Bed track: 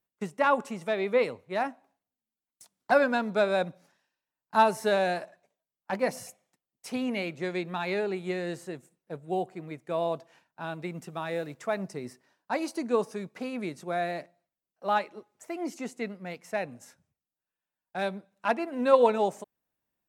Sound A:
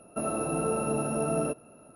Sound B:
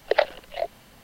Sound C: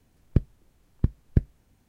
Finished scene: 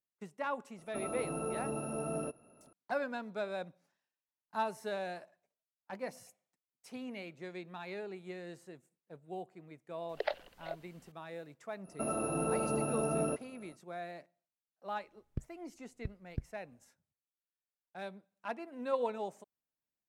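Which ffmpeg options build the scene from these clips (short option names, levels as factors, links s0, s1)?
-filter_complex "[1:a]asplit=2[s0][s1];[0:a]volume=0.224[s2];[s0]atrim=end=1.95,asetpts=PTS-STARTPTS,volume=0.355,afade=t=in:d=0.004:c=hsin,afade=t=out:st=1.946:d=0.004:c=hsin,adelay=780[s3];[2:a]atrim=end=1.03,asetpts=PTS-STARTPTS,volume=0.188,afade=t=in:d=0.004:c=hsin,afade=t=out:st=1.026:d=0.004:c=hsin,adelay=10090[s4];[s1]atrim=end=1.95,asetpts=PTS-STARTPTS,volume=0.596,afade=t=in:d=0.05,afade=t=out:st=1.9:d=0.05,adelay=11830[s5];[3:a]atrim=end=1.88,asetpts=PTS-STARTPTS,volume=0.133,afade=t=in:d=0.004:c=hsin,afade=t=out:st=1.876:d=0.004:c=hsin,adelay=15010[s6];[s2][s3][s4][s5][s6]amix=inputs=5:normalize=0"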